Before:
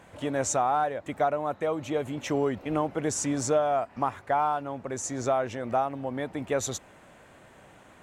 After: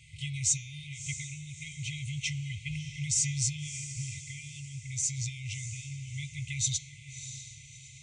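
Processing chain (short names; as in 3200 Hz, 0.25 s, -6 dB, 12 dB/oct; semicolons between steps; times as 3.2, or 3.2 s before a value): elliptic low-pass 9200 Hz, stop band 40 dB; notch comb 570 Hz; de-hum 209.1 Hz, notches 35; in parallel at +1 dB: limiter -23.5 dBFS, peak gain reduction 7 dB; on the sum: FFT band-reject 160–2000 Hz; on a send: diffused feedback echo 0.639 s, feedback 41%, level -11 dB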